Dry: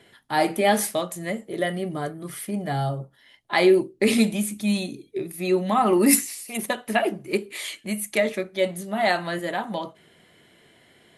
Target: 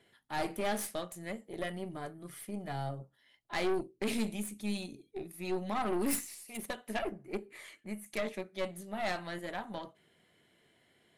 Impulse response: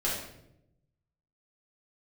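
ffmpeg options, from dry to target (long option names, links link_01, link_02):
-filter_complex "[0:a]asettb=1/sr,asplit=3[link_01][link_02][link_03];[link_01]atrim=end=7.034[link_04];[link_02]atrim=start=7.03:end=8.06,asetpts=PTS-STARTPTS,afade=type=in:duration=0.004:curve=qsin,afade=type=out:start_time=1.026:duration=0.004:curve=qsin,highshelf=frequency=2300:width_type=q:width=1.5:gain=-8[link_05];[link_03]atrim=start=8.056[link_06];[link_04][link_05]acrossfade=duration=0.004:curve1=hsin:curve2=qsin[link_07];[link_07][link_06]acrossfade=duration=0.004:curve1=qsin:curve2=hsin,aeval=exprs='(tanh(8.91*val(0)+0.65)-tanh(0.65))/8.91':channel_layout=same,volume=-9dB"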